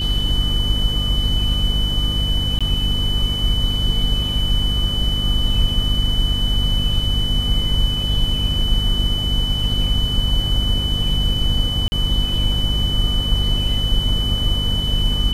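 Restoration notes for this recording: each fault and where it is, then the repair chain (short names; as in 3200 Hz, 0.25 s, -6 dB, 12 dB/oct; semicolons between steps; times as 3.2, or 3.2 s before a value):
hum 50 Hz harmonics 5 -23 dBFS
tone 3000 Hz -22 dBFS
2.59–2.61 gap 16 ms
11.88–11.92 gap 40 ms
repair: de-hum 50 Hz, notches 5; notch 3000 Hz, Q 30; interpolate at 2.59, 16 ms; interpolate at 11.88, 40 ms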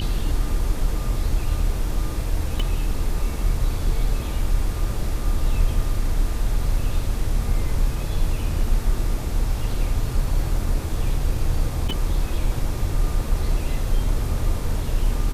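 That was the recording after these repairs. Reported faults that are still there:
tone 3000 Hz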